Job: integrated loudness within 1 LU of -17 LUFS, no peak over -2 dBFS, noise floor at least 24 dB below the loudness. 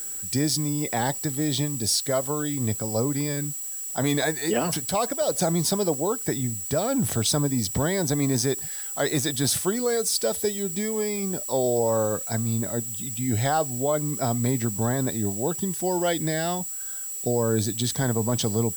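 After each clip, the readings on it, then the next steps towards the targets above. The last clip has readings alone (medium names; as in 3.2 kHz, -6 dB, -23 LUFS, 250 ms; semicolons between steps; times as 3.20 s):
steady tone 7.8 kHz; tone level -32 dBFS; noise floor -34 dBFS; noise floor target -49 dBFS; loudness -25.0 LUFS; peak level -11.0 dBFS; loudness target -17.0 LUFS
-> band-stop 7.8 kHz, Q 30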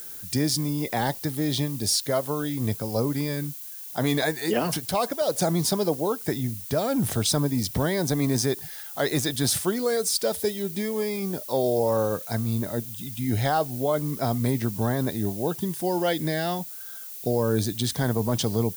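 steady tone not found; noise floor -39 dBFS; noise floor target -50 dBFS
-> noise print and reduce 11 dB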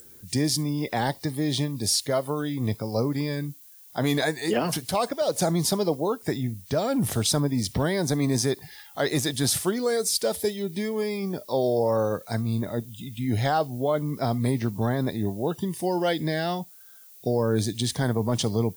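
noise floor -50 dBFS; loudness -26.0 LUFS; peak level -12.0 dBFS; loudness target -17.0 LUFS
-> trim +9 dB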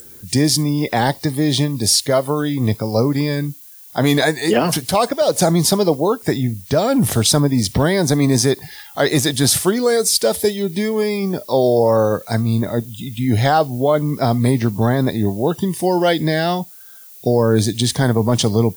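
loudness -17.0 LUFS; peak level -3.0 dBFS; noise floor -41 dBFS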